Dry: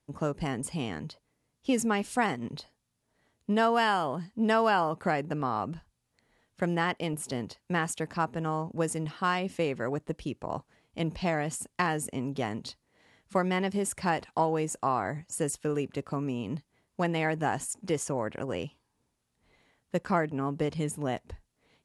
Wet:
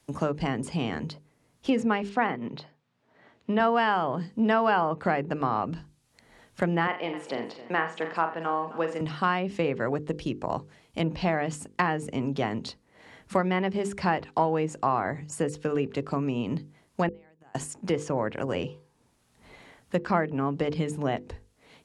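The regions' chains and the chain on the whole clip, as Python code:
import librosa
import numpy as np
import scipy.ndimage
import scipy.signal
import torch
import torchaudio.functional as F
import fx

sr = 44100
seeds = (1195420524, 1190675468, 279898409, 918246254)

y = fx.chain(x, sr, fx.bandpass_edges(low_hz=120.0, high_hz=3100.0),
    fx.low_shelf(hz=170.0, db=-5.5), at=(2.09, 3.6))
y = fx.chain(y, sr, fx.bandpass_edges(low_hz=380.0, high_hz=3100.0),
    fx.room_flutter(wall_m=7.2, rt60_s=0.31),
    fx.echo_warbled(ms=263, feedback_pct=37, rate_hz=2.8, cents=73, wet_db=-17.5), at=(6.87, 9.01))
y = fx.chain(y, sr, fx.highpass(hz=48.0, slope=24),
    fx.gate_flip(shuts_db=-23.0, range_db=-37), at=(17.08, 17.55))
y = fx.hum_notches(y, sr, base_hz=50, count=10)
y = fx.env_lowpass_down(y, sr, base_hz=2800.0, full_db=-25.5)
y = fx.band_squash(y, sr, depth_pct=40)
y = F.gain(torch.from_numpy(y), 3.5).numpy()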